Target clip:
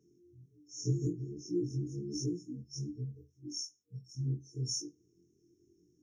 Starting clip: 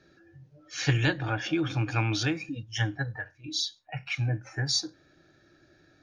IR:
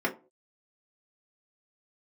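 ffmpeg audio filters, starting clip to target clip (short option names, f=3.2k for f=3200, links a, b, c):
-af "afftfilt=real='re':imag='-im':win_size=2048:overlap=0.75,highpass=f=140:p=1,afftfilt=real='re*(1-between(b*sr/4096,470,5300))':imag='im*(1-between(b*sr/4096,470,5300))':win_size=4096:overlap=0.75"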